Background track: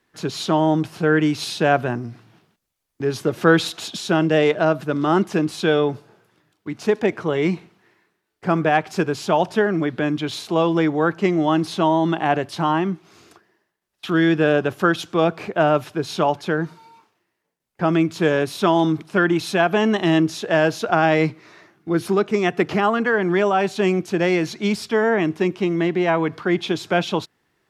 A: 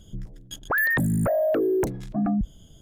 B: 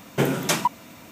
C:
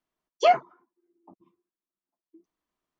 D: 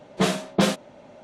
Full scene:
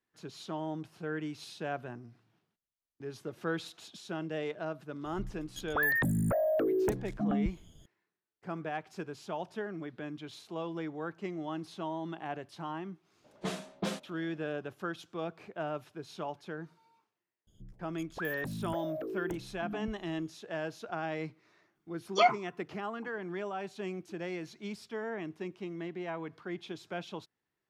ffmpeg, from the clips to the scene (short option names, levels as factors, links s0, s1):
-filter_complex "[1:a]asplit=2[s0][s1];[0:a]volume=0.106[s2];[3:a]aecho=1:1:0.9:0.65[s3];[s0]atrim=end=2.81,asetpts=PTS-STARTPTS,volume=0.473,afade=t=in:d=0.004:c=hsin,afade=t=out:st=2.806:d=0.004:c=hsin,adelay=222705S[s4];[4:a]atrim=end=1.23,asetpts=PTS-STARTPTS,volume=0.188,afade=t=in:d=0.004:c=hsin,afade=t=out:st=1.226:d=0.004:c=hsin,adelay=13240[s5];[s1]atrim=end=2.81,asetpts=PTS-STARTPTS,volume=0.158,afade=t=in:d=0.004:c=hsin,afade=t=out:st=2.806:d=0.004:c=hsin,adelay=17470[s6];[s3]atrim=end=2.99,asetpts=PTS-STARTPTS,volume=0.708,afade=t=in:d=0.004:c=hsin,afade=t=out:st=2.986:d=0.004:c=hsin,adelay=21750[s7];[s2][s4][s5][s6][s7]amix=inputs=5:normalize=0"